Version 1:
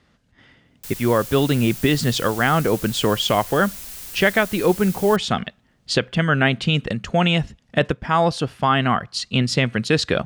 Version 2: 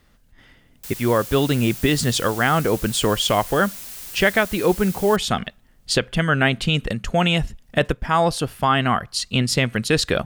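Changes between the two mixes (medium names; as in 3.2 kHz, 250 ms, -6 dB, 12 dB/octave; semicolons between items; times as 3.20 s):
speech: remove band-pass 130–6200 Hz; master: add bass shelf 93 Hz -11.5 dB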